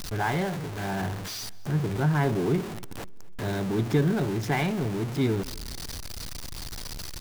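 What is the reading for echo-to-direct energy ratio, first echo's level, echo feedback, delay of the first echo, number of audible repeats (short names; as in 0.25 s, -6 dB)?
-22.5 dB, -23.5 dB, 45%, 0.248 s, 2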